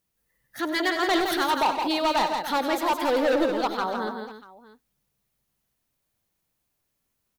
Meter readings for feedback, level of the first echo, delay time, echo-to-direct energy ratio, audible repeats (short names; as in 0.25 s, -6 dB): no steady repeat, -12.0 dB, 97 ms, -4.0 dB, 4